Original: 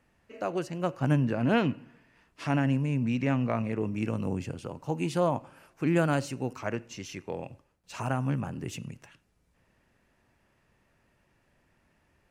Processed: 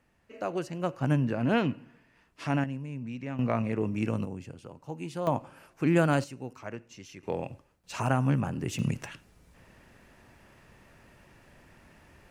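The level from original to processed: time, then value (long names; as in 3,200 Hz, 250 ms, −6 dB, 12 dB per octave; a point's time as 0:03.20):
−1 dB
from 0:02.64 −9.5 dB
from 0:03.39 +1 dB
from 0:04.25 −7.5 dB
from 0:05.27 +1.5 dB
from 0:06.24 −7 dB
from 0:07.23 +3.5 dB
from 0:08.79 +12 dB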